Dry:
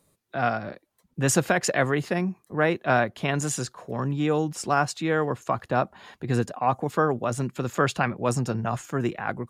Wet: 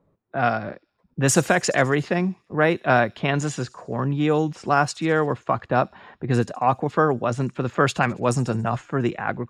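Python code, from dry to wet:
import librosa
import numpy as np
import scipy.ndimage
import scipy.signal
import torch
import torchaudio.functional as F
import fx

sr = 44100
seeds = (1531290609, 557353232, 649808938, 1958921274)

p1 = fx.env_lowpass(x, sr, base_hz=1100.0, full_db=-17.5)
p2 = p1 + fx.echo_wet_highpass(p1, sr, ms=69, feedback_pct=60, hz=5100.0, wet_db=-15.5, dry=0)
y = p2 * librosa.db_to_amplitude(3.5)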